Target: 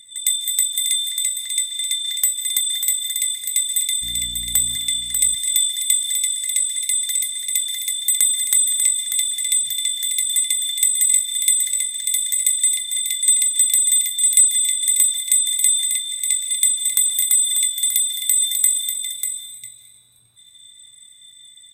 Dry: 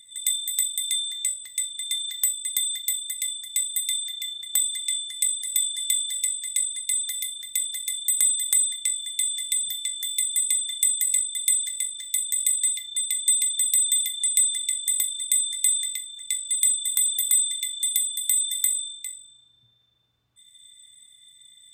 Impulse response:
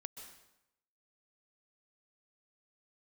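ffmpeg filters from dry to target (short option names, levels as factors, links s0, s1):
-filter_complex "[0:a]asplit=2[s0][s1];[s1]asplit=4[s2][s3][s4][s5];[s2]adelay=309,afreqshift=100,volume=0.0631[s6];[s3]adelay=618,afreqshift=200,volume=0.0347[s7];[s4]adelay=927,afreqshift=300,volume=0.0191[s8];[s5]adelay=1236,afreqshift=400,volume=0.0105[s9];[s6][s7][s8][s9]amix=inputs=4:normalize=0[s10];[s0][s10]amix=inputs=2:normalize=0,asettb=1/sr,asplit=3[s11][s12][s13];[s11]atrim=end=4.024[s14];[s12]atrim=start=4.02:end=4.76,asetpts=PTS-STARTPTS,afade=t=in:d=0.004:c=qsin,afade=t=out:st=0.736:d=0.004:c=qsin,aeval=exprs='val(0)+0.00708*(sin(2*PI*60*n/s)+sin(2*PI*2*60*n/s)/2+sin(2*PI*3*60*n/s)/3+sin(2*PI*4*60*n/s)/4+sin(2*PI*5*60*n/s)/5)':c=same[s15];[s13]atrim=start=4.756[s16];[s14][s15]acrossfade=d=0.004:c1=hsin:c2=qsin[s17];[s17][s16]acrossfade=d=0.004:c1=qsin:c2=hsin,aecho=1:1:592:0.473,asplit=2[s18][s19];[1:a]atrim=start_sample=2205,asetrate=38367,aresample=44100[s20];[s19][s20]afir=irnorm=-1:irlink=0,volume=1.68[s21];[s18][s21]amix=inputs=2:normalize=0,volume=0.891"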